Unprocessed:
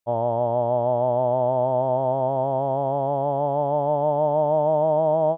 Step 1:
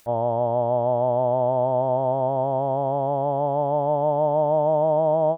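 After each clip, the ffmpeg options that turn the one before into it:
ffmpeg -i in.wav -af "acompressor=mode=upward:threshold=-35dB:ratio=2.5" out.wav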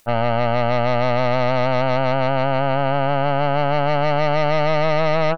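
ffmpeg -i in.wav -af "aeval=exprs='0.251*(cos(1*acos(clip(val(0)/0.251,-1,1)))-cos(1*PI/2))+0.0794*(cos(4*acos(clip(val(0)/0.251,-1,1)))-cos(4*PI/2))+0.0447*(cos(5*acos(clip(val(0)/0.251,-1,1)))-cos(5*PI/2))+0.0355*(cos(7*acos(clip(val(0)/0.251,-1,1)))-cos(7*PI/2))+0.0224*(cos(8*acos(clip(val(0)/0.251,-1,1)))-cos(8*PI/2))':channel_layout=same" out.wav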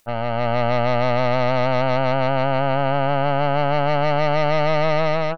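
ffmpeg -i in.wav -af "dynaudnorm=framelen=160:gausssize=5:maxgain=5.5dB,volume=-5.5dB" out.wav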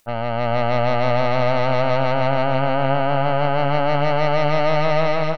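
ffmpeg -i in.wav -af "aecho=1:1:435:0.355" out.wav

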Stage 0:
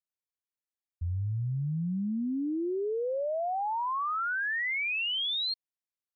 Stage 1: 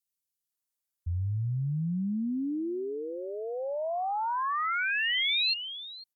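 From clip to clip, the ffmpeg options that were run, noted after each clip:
ffmpeg -i in.wav -filter_complex "[0:a]aemphasis=mode=production:type=cd,acrossover=split=450|2500[link_01][link_02][link_03];[link_01]adelay=50[link_04];[link_02]adelay=500[link_05];[link_04][link_05][link_03]amix=inputs=3:normalize=0,volume=1.5dB" out.wav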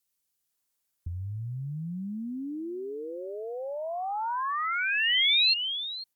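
ffmpeg -i in.wav -filter_complex "[0:a]acrossover=split=1300|2700[link_01][link_02][link_03];[link_01]acompressor=threshold=-44dB:ratio=4[link_04];[link_02]acompressor=threshold=-43dB:ratio=4[link_05];[link_03]acompressor=threshold=-29dB:ratio=4[link_06];[link_04][link_05][link_06]amix=inputs=3:normalize=0,volume=7.5dB" out.wav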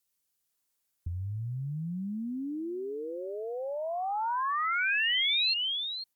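ffmpeg -i in.wav -af "alimiter=limit=-21.5dB:level=0:latency=1:release=24" out.wav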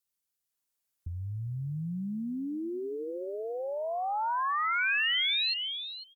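ffmpeg -i in.wav -filter_complex "[0:a]dynaudnorm=framelen=440:gausssize=5:maxgain=6.5dB,asplit=2[link_01][link_02];[link_02]adelay=402.3,volume=-20dB,highshelf=frequency=4000:gain=-9.05[link_03];[link_01][link_03]amix=inputs=2:normalize=0,volume=-6dB" out.wav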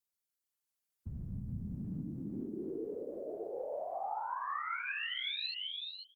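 ffmpeg -i in.wav -af "acompressor=threshold=-31dB:ratio=6,afftfilt=real='hypot(re,im)*cos(2*PI*random(0))':imag='hypot(re,im)*sin(2*PI*random(1))':win_size=512:overlap=0.75,volume=1dB" out.wav

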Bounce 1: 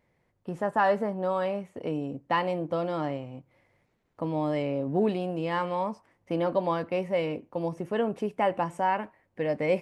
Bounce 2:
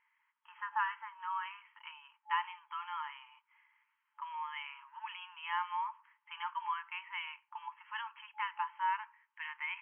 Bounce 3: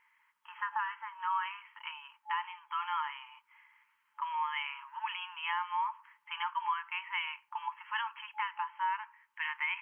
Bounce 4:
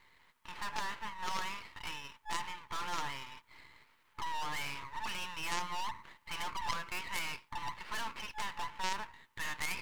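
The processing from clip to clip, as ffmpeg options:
ffmpeg -i in.wav -af "afftfilt=real='re*between(b*sr/4096,860,3300)':imag='im*between(b*sr/4096,860,3300)':win_size=4096:overlap=0.75,acompressor=threshold=-42dB:ratio=1.5,volume=1dB" out.wav
ffmpeg -i in.wav -af "alimiter=level_in=6.5dB:limit=-24dB:level=0:latency=1:release=482,volume=-6.5dB,volume=7dB" out.wav
ffmpeg -i in.wav -af "aeval=exprs='max(val(0),0)':channel_layout=same,aeval=exprs='0.0708*(cos(1*acos(clip(val(0)/0.0708,-1,1)))-cos(1*PI/2))+0.0224*(cos(4*acos(clip(val(0)/0.0708,-1,1)))-cos(4*PI/2))+0.00316*(cos(6*acos(clip(val(0)/0.0708,-1,1)))-cos(6*PI/2))':channel_layout=same,volume=9dB" out.wav

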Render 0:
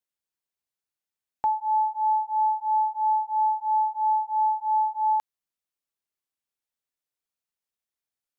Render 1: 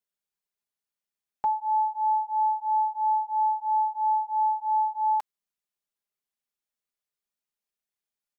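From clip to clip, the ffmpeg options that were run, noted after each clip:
ffmpeg -i in.wav -af "aecho=1:1:4.9:0.65,volume=-3dB" out.wav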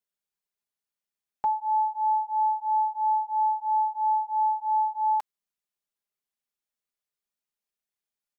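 ffmpeg -i in.wav -af anull out.wav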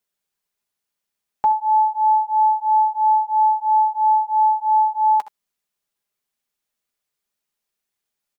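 ffmpeg -i in.wav -af "aecho=1:1:13|66|77:0.158|0.141|0.158,volume=8dB" out.wav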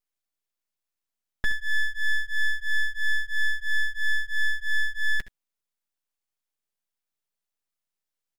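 ffmpeg -i in.wav -af "aeval=exprs='abs(val(0))':channel_layout=same,volume=-4.5dB" out.wav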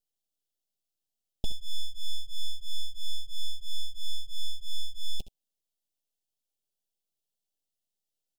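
ffmpeg -i in.wav -af "asuperstop=centerf=1500:order=12:qfactor=0.78" out.wav

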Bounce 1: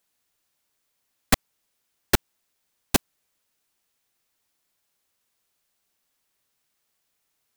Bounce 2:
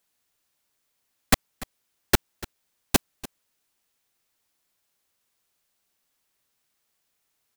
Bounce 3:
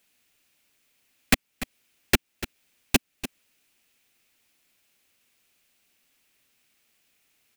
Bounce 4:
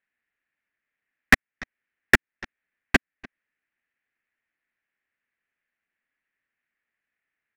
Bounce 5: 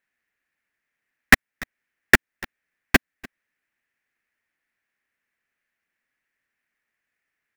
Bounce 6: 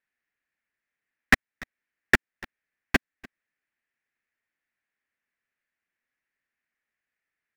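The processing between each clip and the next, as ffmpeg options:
ffmpeg -i in.wav -af "aecho=1:1:292:0.119" out.wav
ffmpeg -i in.wav -af "equalizer=frequency=250:width_type=o:width=0.67:gain=5,equalizer=frequency=1000:width_type=o:width=0.67:gain=-4,equalizer=frequency=2500:width_type=o:width=0.67:gain=8,acompressor=threshold=-36dB:ratio=1.5,volume=5.5dB" out.wav
ffmpeg -i in.wav -af "lowpass=frequency=1800:width_type=q:width=5.2,aeval=exprs='0.447*(cos(1*acos(clip(val(0)/0.447,-1,1)))-cos(1*PI/2))+0.0708*(cos(3*acos(clip(val(0)/0.447,-1,1)))-cos(3*PI/2))+0.0251*(cos(7*acos(clip(val(0)/0.447,-1,1)))-cos(7*PI/2))':channel_layout=same,volume=1.5dB" out.wav
ffmpeg -i in.wav -af "acrusher=bits=2:mode=log:mix=0:aa=0.000001,volume=2.5dB" out.wav
ffmpeg -i in.wav -af "highshelf=frequency=9100:gain=-10.5,volume=-5.5dB" out.wav

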